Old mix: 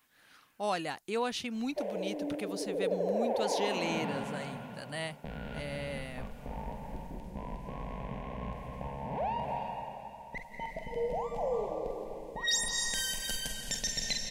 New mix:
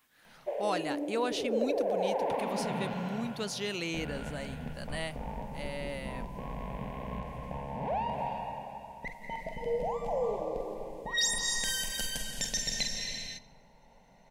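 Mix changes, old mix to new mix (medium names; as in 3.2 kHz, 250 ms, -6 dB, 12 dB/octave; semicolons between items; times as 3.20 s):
background: entry -1.30 s; reverb: on, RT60 2.1 s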